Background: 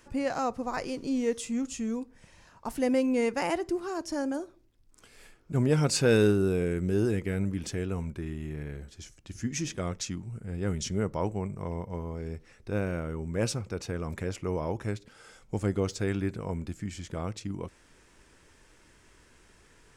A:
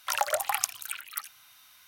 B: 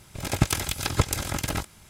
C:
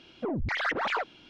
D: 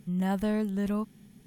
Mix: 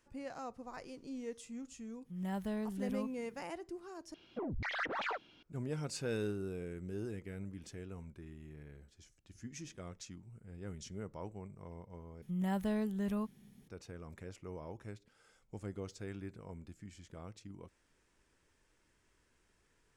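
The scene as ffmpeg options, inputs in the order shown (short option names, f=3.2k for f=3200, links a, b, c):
-filter_complex "[4:a]asplit=2[a][b];[0:a]volume=-15dB[c];[a]dynaudnorm=f=110:g=3:m=4.5dB[d];[c]asplit=3[e][f][g];[e]atrim=end=4.144[h];[3:a]atrim=end=1.29,asetpts=PTS-STARTPTS,volume=-8.5dB[i];[f]atrim=start=5.426:end=12.224[j];[b]atrim=end=1.46,asetpts=PTS-STARTPTS,volume=-6.5dB[k];[g]atrim=start=13.676[l];[d]atrim=end=1.46,asetpts=PTS-STARTPTS,volume=-14.5dB,afade=t=in:d=0.05,afade=t=out:st=1.41:d=0.05,adelay=2030[m];[h][i]acrossfade=d=0.004:c1=hsin:c2=hsin[n];[n][j]acrossfade=d=0.004:c1=hsin:c2=hsin[o];[o][k]acrossfade=d=0.004:c1=hsin:c2=hsin[p];[p][l]acrossfade=d=0.004:c1=hsin:c2=hsin[q];[q][m]amix=inputs=2:normalize=0"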